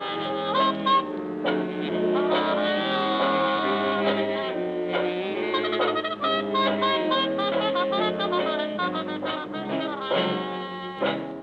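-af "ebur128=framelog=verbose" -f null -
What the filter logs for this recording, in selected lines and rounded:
Integrated loudness:
  I:         -25.0 LUFS
  Threshold: -35.0 LUFS
Loudness range:
  LRA:         2.3 LU
  Threshold: -44.7 LUFS
  LRA low:   -26.2 LUFS
  LRA high:  -24.0 LUFS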